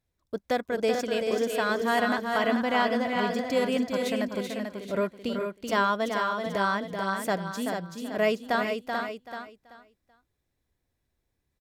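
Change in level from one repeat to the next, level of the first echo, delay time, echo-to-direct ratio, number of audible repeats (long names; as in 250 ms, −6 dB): repeats not evenly spaced, −6.0 dB, 382 ms, −2.5 dB, 6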